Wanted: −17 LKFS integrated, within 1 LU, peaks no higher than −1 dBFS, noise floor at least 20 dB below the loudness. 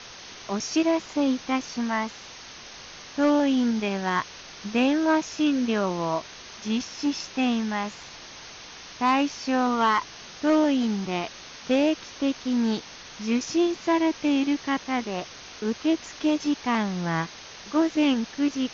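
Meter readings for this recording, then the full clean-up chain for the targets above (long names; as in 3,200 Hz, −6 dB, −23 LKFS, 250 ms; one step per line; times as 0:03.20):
background noise floor −44 dBFS; target noise floor −46 dBFS; integrated loudness −25.5 LKFS; sample peak −13.5 dBFS; target loudness −17.0 LKFS
→ broadband denoise 6 dB, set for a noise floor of −44 dBFS
level +8.5 dB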